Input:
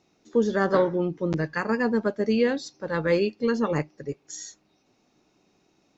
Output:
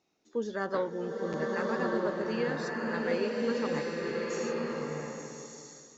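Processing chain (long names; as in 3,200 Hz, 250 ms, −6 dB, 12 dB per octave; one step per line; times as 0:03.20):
low-shelf EQ 220 Hz −8.5 dB
slow-attack reverb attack 1,240 ms, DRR −2 dB
level −8.5 dB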